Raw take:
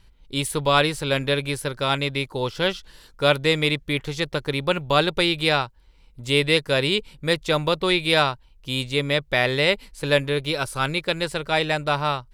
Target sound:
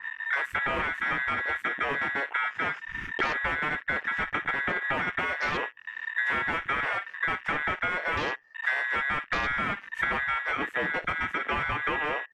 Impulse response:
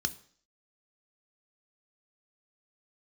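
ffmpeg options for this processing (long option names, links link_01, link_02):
-filter_complex "[0:a]asplit=2[link_01][link_02];[1:a]atrim=start_sample=2205,asetrate=74970,aresample=44100[link_03];[link_02][link_03]afir=irnorm=-1:irlink=0,volume=-15.5dB[link_04];[link_01][link_04]amix=inputs=2:normalize=0,aeval=exprs='0.562*sin(PI/2*5.01*val(0)/0.562)':channel_layout=same,aecho=1:1:16|56:0.355|0.168,aeval=exprs='val(0)*sin(2*PI*1800*n/s)':channel_layout=same,aemphasis=mode=reproduction:type=50kf,acompressor=threshold=-28dB:ratio=16,afwtdn=0.0141,adynamicequalizer=threshold=0.00398:dfrequency=2200:dqfactor=0.7:tfrequency=2200:tqfactor=0.7:attack=5:release=100:ratio=0.375:range=3:mode=cutabove:tftype=highshelf,volume=4.5dB"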